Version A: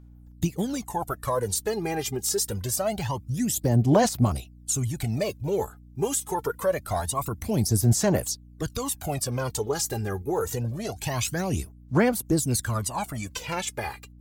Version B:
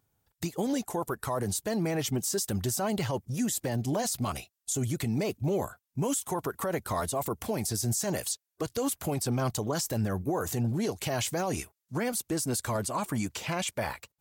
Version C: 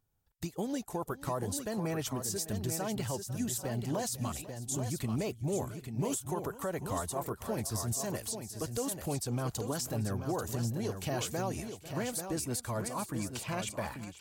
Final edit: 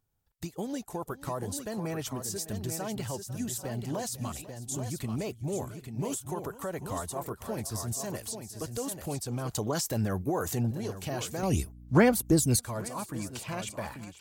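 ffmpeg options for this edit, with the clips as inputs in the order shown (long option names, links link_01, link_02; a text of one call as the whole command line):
ffmpeg -i take0.wav -i take1.wav -i take2.wav -filter_complex "[2:a]asplit=3[link_01][link_02][link_03];[link_01]atrim=end=9.552[link_04];[1:a]atrim=start=9.548:end=10.712[link_05];[link_02]atrim=start=10.708:end=11.432[link_06];[0:a]atrim=start=11.428:end=12.592[link_07];[link_03]atrim=start=12.588[link_08];[link_04][link_05]acrossfade=duration=0.004:curve1=hsin:curve2=hsin[link_09];[link_09][link_06]acrossfade=duration=0.004:curve1=hsin:curve2=hsin[link_10];[link_10][link_07]acrossfade=duration=0.004:curve1=hsin:curve2=hsin[link_11];[link_11][link_08]acrossfade=duration=0.004:curve1=hsin:curve2=hsin" out.wav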